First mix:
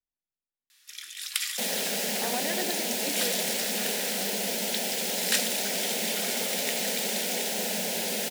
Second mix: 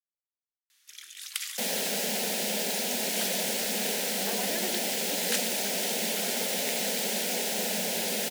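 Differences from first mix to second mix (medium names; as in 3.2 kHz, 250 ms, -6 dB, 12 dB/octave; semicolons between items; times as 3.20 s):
speech: entry +2.05 s; reverb: off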